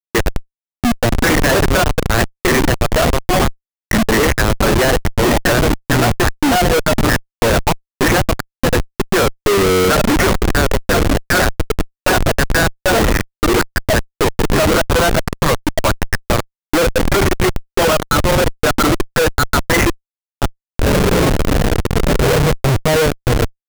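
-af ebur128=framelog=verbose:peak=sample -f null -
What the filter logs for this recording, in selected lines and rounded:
Integrated loudness:
  I:         -15.5 LUFS
  Threshold: -25.6 LUFS
Loudness range:
  LRA:         1.6 LU
  Threshold: -35.6 LUFS
  LRA low:   -16.3 LUFS
  LRA high:  -14.8 LUFS
Sample peak:
  Peak:       -6.2 dBFS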